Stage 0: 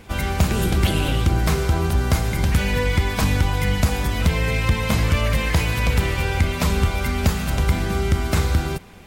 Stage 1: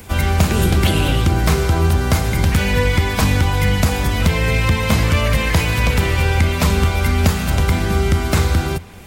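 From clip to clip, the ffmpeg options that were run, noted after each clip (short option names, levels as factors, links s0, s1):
-filter_complex "[0:a]equalizer=f=85:w=4.8:g=7.5,acrossover=split=130|1500|7100[s0][s1][s2][s3];[s0]alimiter=limit=0.158:level=0:latency=1:release=223[s4];[s3]acompressor=mode=upward:threshold=0.00631:ratio=2.5[s5];[s4][s1][s2][s5]amix=inputs=4:normalize=0,volume=1.68"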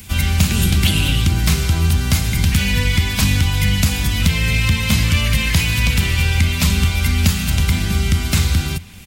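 -af "firequalizer=gain_entry='entry(210,0);entry(410,-12);entry(2700,4)':delay=0.05:min_phase=1"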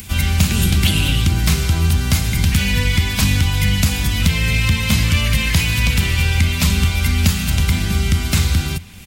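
-af "acompressor=mode=upward:threshold=0.0282:ratio=2.5"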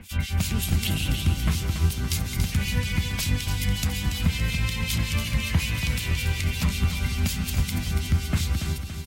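-filter_complex "[0:a]acrossover=split=2200[s0][s1];[s0]aeval=exprs='val(0)*(1-1/2+1/2*cos(2*PI*5.4*n/s))':c=same[s2];[s1]aeval=exprs='val(0)*(1-1/2-1/2*cos(2*PI*5.4*n/s))':c=same[s3];[s2][s3]amix=inputs=2:normalize=0,asplit=2[s4][s5];[s5]aecho=0:1:283|566|849|1132|1415|1698:0.398|0.215|0.116|0.0627|0.0339|0.0183[s6];[s4][s6]amix=inputs=2:normalize=0,volume=0.531"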